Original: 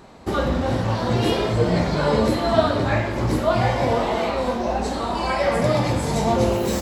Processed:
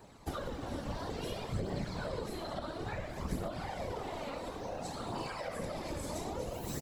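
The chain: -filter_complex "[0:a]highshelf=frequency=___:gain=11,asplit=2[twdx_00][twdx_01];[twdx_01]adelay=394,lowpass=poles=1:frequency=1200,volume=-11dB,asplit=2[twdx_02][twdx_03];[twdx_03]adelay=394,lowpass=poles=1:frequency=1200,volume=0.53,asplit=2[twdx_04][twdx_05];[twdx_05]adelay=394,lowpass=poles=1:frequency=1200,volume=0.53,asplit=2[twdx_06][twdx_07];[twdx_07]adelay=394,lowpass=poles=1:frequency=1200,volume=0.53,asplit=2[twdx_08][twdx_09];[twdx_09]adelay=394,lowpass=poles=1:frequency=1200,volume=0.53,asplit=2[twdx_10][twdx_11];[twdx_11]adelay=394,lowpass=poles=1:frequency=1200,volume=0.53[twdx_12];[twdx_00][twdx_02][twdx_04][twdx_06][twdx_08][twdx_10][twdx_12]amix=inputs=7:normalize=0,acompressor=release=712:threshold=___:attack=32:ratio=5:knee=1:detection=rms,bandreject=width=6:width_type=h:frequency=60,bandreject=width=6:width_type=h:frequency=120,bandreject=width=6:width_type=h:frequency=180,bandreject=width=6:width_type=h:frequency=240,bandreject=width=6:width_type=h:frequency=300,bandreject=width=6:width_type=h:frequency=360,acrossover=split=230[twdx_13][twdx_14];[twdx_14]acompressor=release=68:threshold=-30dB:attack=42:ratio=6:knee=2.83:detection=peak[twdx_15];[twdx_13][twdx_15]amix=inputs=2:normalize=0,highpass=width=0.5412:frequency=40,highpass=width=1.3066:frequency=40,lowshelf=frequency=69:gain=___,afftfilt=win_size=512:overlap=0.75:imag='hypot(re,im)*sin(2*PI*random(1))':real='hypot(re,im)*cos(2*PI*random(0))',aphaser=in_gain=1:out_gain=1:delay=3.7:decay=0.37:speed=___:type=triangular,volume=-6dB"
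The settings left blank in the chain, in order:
6900, -23dB, 5, 0.58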